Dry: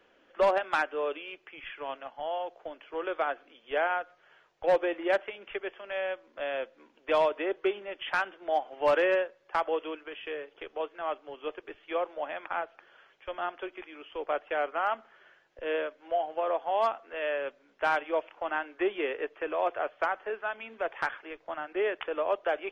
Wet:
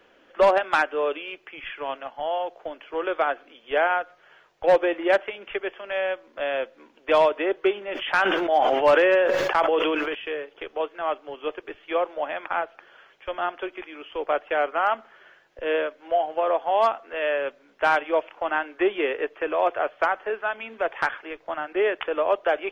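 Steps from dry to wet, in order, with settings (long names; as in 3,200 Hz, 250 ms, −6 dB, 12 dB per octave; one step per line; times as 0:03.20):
0:07.78–0:10.15: level that may fall only so fast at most 22 dB per second
level +6.5 dB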